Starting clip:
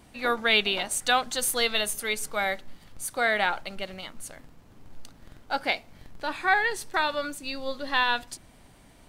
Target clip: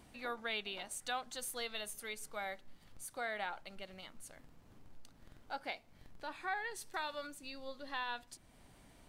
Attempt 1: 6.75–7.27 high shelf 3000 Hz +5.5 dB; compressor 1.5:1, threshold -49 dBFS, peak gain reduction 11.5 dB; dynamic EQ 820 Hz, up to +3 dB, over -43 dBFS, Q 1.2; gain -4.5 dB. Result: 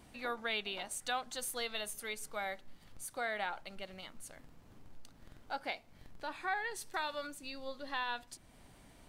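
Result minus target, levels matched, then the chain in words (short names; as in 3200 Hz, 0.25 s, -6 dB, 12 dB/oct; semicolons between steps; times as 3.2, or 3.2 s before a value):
compressor: peak gain reduction -2.5 dB
6.75–7.27 high shelf 3000 Hz +5.5 dB; compressor 1.5:1, threshold -57 dBFS, peak gain reduction 14 dB; dynamic EQ 820 Hz, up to +3 dB, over -43 dBFS, Q 1.2; gain -4.5 dB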